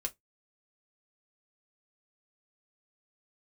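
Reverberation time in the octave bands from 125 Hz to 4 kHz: 0.20, 0.20, 0.15, 0.15, 0.15, 0.10 s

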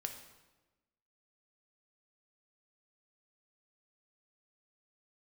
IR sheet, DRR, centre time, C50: 4.5 dB, 23 ms, 7.5 dB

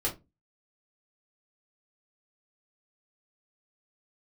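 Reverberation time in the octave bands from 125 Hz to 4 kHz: 0.35, 0.35, 0.25, 0.20, 0.15, 0.15 s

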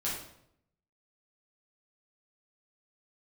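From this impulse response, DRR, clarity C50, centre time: -7.5 dB, 2.5 dB, 49 ms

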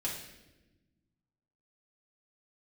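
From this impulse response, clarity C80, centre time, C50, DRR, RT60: 7.5 dB, 39 ms, 4.5 dB, -5.5 dB, not exponential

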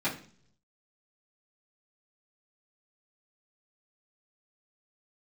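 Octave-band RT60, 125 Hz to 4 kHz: 1.0, 0.70, 0.55, 0.45, 0.45, 0.50 s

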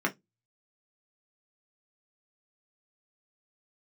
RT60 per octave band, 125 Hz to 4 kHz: 0.30, 0.25, 0.15, 0.15, 0.15, 0.15 s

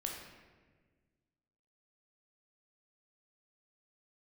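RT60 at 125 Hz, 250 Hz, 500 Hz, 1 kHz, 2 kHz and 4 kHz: 2.1, 2.1, 1.7, 1.3, 1.3, 0.90 s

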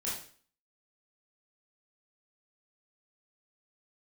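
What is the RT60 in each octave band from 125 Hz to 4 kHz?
0.45, 0.50, 0.45, 0.45, 0.45, 0.45 s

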